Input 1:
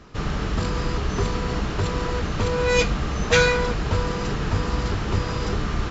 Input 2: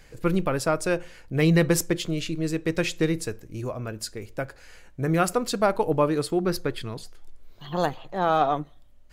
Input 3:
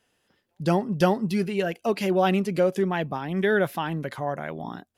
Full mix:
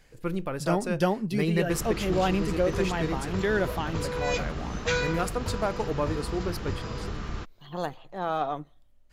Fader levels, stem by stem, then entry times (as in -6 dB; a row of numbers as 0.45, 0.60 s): -9.5, -7.0, -4.0 dB; 1.55, 0.00, 0.00 s